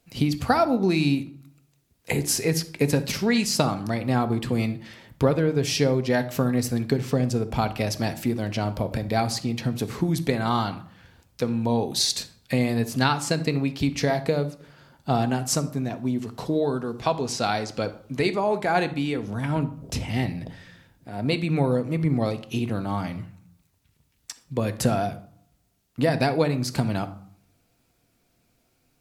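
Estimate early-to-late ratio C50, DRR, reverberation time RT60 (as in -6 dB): 15.0 dB, 9.5 dB, 0.60 s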